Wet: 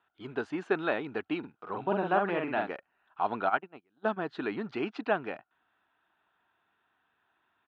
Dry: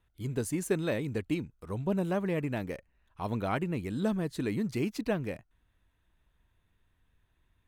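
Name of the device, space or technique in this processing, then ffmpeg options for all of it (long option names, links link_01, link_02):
phone earpiece: -filter_complex "[0:a]asplit=3[link_01][link_02][link_03];[link_01]afade=type=out:start_time=3.48:duration=0.02[link_04];[link_02]agate=range=-35dB:threshold=-28dB:ratio=16:detection=peak,afade=type=in:start_time=3.48:duration=0.02,afade=type=out:start_time=4.16:duration=0.02[link_05];[link_03]afade=type=in:start_time=4.16:duration=0.02[link_06];[link_04][link_05][link_06]amix=inputs=3:normalize=0,highpass=420,equalizer=frequency=520:width_type=q:width=4:gain=-8,equalizer=frequency=770:width_type=q:width=4:gain=7,equalizer=frequency=1400:width_type=q:width=4:gain=8,equalizer=frequency=2100:width_type=q:width=4:gain=-7,lowpass=frequency=3200:width=0.5412,lowpass=frequency=3200:width=1.3066,asplit=3[link_07][link_08][link_09];[link_07]afade=type=out:start_time=1.43:duration=0.02[link_10];[link_08]asplit=2[link_11][link_12];[link_12]adelay=46,volume=-3.5dB[link_13];[link_11][link_13]amix=inputs=2:normalize=0,afade=type=in:start_time=1.43:duration=0.02,afade=type=out:start_time=2.67:duration=0.02[link_14];[link_09]afade=type=in:start_time=2.67:duration=0.02[link_15];[link_10][link_14][link_15]amix=inputs=3:normalize=0,volume=5.5dB"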